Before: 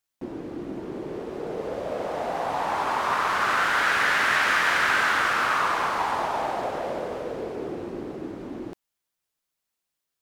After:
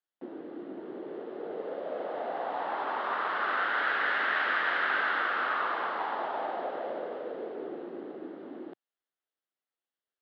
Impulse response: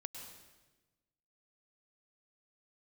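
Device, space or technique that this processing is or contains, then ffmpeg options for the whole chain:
guitar cabinet: -filter_complex "[0:a]highpass=88,equalizer=f=110:t=q:w=4:g=-5,equalizer=f=1k:t=q:w=4:g=-5,equalizer=f=2.4k:t=q:w=4:g=-9,lowpass=f=3.7k:w=0.5412,lowpass=f=3.7k:w=1.3066,acrossover=split=230 4800:gain=0.0631 1 0.0891[a][b][c];[a][b][c]amix=inputs=3:normalize=0,volume=-4.5dB"

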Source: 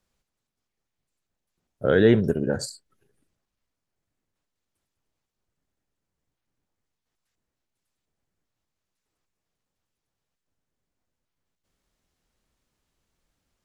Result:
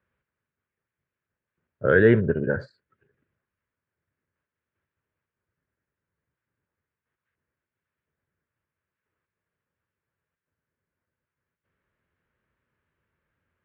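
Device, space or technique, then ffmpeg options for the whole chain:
bass cabinet: -af "highpass=84,equalizer=f=87:t=q:w=4:g=4,equalizer=f=200:t=q:w=4:g=-4,equalizer=f=290:t=q:w=4:g=-6,equalizer=f=750:t=q:w=4:g=-10,equalizer=f=1.6k:t=q:w=4:g=6,lowpass=f=2.4k:w=0.5412,lowpass=f=2.4k:w=1.3066,volume=2dB"

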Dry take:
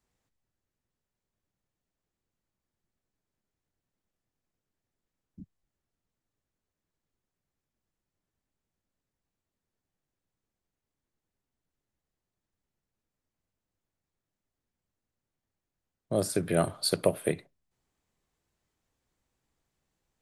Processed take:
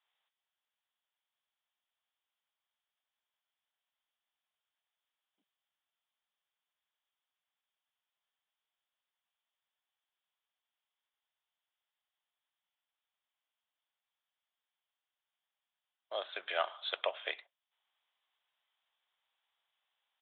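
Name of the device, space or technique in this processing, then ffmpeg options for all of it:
musical greeting card: -af "aresample=8000,aresample=44100,highpass=f=760:w=0.5412,highpass=f=760:w=1.3066,equalizer=f=3.3k:t=o:w=0.45:g=10.5"

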